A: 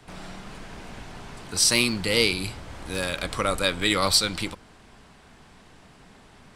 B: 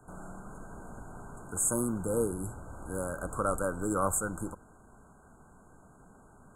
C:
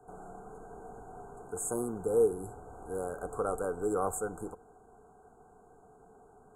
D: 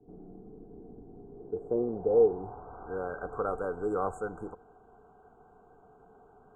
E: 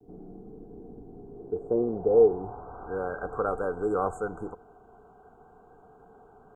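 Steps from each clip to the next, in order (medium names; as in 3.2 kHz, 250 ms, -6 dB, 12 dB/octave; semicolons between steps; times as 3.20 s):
FFT band-reject 1.6–6.5 kHz; trim -4.5 dB
small resonant body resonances 440/730 Hz, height 17 dB, ringing for 45 ms; trim -8 dB
low-pass sweep 300 Hz -> 3 kHz, 1.24–3.69 s
vibrato 0.38 Hz 18 cents; trim +3.5 dB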